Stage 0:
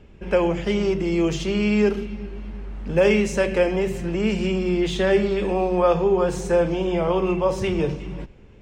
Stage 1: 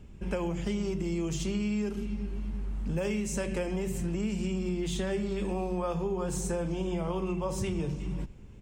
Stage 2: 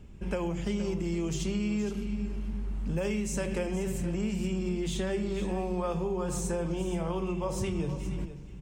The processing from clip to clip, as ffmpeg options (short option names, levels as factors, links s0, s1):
-af "firequalizer=gain_entry='entry(180,0);entry(470,-9);entry(1000,-5);entry(1700,-8);entry(5200,-2);entry(7700,6)':delay=0.05:min_phase=1,acompressor=threshold=0.0398:ratio=6"
-af "aecho=1:1:471:0.237"